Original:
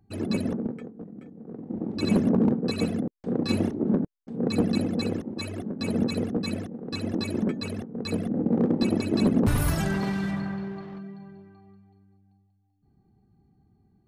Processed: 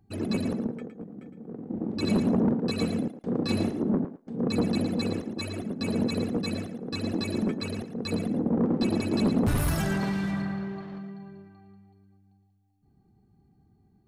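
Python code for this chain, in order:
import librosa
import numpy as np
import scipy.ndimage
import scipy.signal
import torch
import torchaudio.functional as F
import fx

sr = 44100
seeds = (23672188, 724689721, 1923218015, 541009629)

p1 = 10.0 ** (-17.5 / 20.0) * np.tanh(x / 10.0 ** (-17.5 / 20.0))
y = p1 + fx.echo_thinned(p1, sr, ms=112, feedback_pct=15, hz=420.0, wet_db=-8.5, dry=0)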